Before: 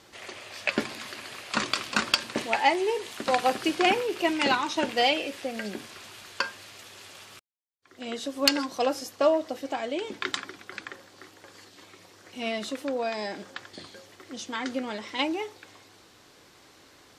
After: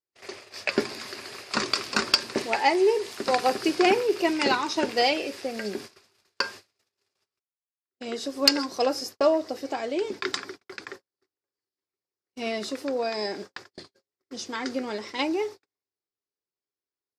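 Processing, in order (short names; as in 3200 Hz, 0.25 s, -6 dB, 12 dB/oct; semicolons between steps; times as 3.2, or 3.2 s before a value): gate -42 dBFS, range -46 dB; thirty-one-band EQ 400 Hz +9 dB, 3150 Hz -5 dB, 5000 Hz +8 dB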